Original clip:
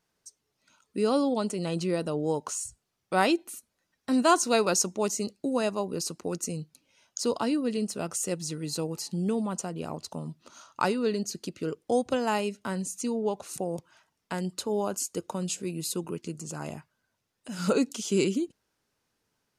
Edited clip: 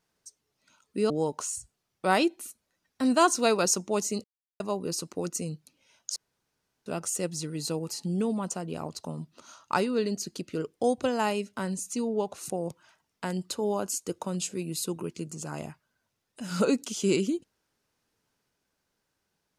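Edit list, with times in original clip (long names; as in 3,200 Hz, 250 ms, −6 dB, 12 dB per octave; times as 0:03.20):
0:01.10–0:02.18: remove
0:05.32–0:05.68: silence
0:07.24–0:07.94: fill with room tone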